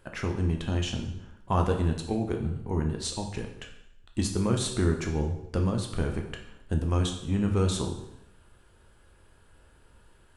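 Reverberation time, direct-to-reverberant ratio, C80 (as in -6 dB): 0.80 s, 2.5 dB, 10.0 dB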